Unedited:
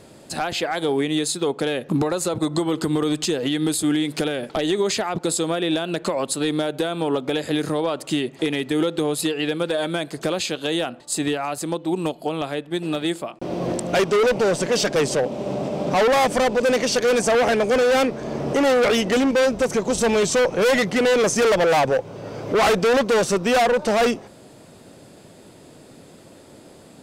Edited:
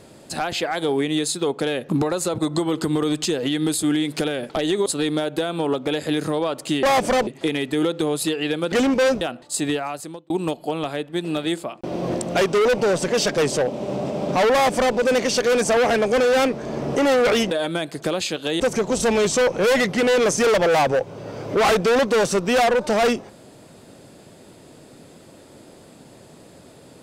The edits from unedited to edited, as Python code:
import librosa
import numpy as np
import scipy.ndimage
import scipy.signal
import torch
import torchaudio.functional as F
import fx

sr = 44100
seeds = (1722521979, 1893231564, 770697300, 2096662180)

y = fx.edit(x, sr, fx.cut(start_s=4.86, length_s=1.42),
    fx.swap(start_s=9.7, length_s=1.09, other_s=19.09, other_length_s=0.49),
    fx.fade_out_span(start_s=11.35, length_s=0.53),
    fx.duplicate(start_s=16.1, length_s=0.44, to_s=8.25), tone=tone)